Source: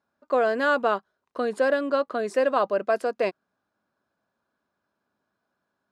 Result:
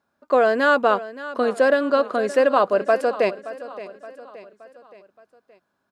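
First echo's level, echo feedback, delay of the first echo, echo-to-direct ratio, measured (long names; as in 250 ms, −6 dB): −15.5 dB, 49%, 572 ms, −14.5 dB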